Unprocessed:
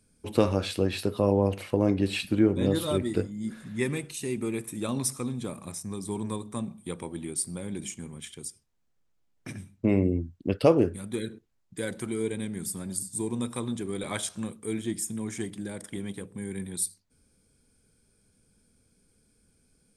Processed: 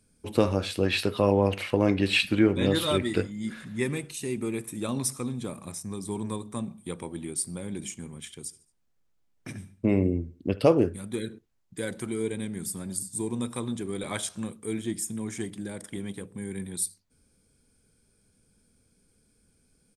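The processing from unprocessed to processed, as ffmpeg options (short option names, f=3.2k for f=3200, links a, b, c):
-filter_complex "[0:a]asettb=1/sr,asplit=3[a][b][c];[a]atrim=end=0.834[d];[b]atrim=start=0.83:end=3.65,asetpts=PTS-STARTPTS,afade=t=in:d=0.004:c=qsin,afade=t=out:st=2.816:d=0.004:c=qsin,equalizer=f=2.4k:t=o:w=2.3:g=9.5[e];[c]atrim=start=3.646[f];[d][e]acrossfade=d=0.004:c1=hsin:c2=qsin[g];[g][f]acrossfade=d=0.004:c1=qsin:c2=hsin,asplit=3[h][i][j];[h]afade=t=out:st=8.46:d=0.02[k];[i]aecho=1:1:73|146|219:0.1|0.045|0.0202,afade=t=in:st=8.46:d=0.02,afade=t=out:st=10.72:d=0.02[l];[j]afade=t=in:st=10.72:d=0.02[m];[k][l][m]amix=inputs=3:normalize=0"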